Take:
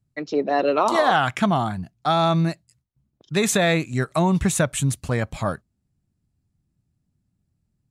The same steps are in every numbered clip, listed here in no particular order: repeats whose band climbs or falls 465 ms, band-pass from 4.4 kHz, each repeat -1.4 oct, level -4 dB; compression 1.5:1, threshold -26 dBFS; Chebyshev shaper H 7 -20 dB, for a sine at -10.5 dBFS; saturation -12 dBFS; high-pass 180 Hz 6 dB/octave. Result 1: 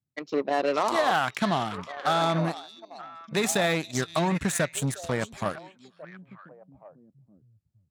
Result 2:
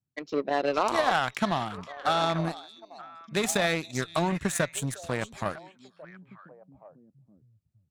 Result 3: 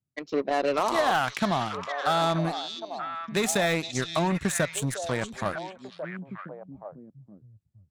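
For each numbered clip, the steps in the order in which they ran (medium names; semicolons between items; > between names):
saturation > repeats whose band climbs or falls > Chebyshev shaper > high-pass > compression; high-pass > compression > repeats whose band climbs or falls > saturation > Chebyshev shaper; high-pass > Chebyshev shaper > saturation > repeats whose band climbs or falls > compression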